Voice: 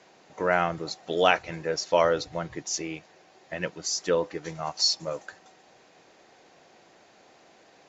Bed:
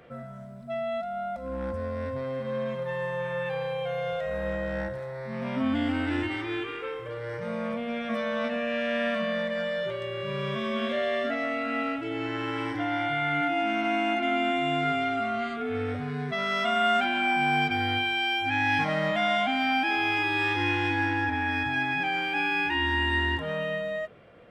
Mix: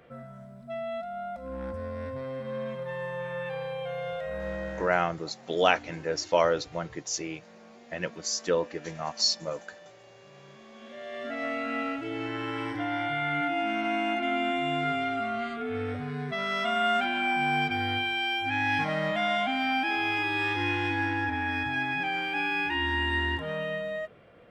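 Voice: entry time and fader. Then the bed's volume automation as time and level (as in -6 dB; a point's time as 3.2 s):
4.40 s, -1.5 dB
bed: 4.68 s -3.5 dB
5.27 s -21.5 dB
10.73 s -21.5 dB
11.46 s -2 dB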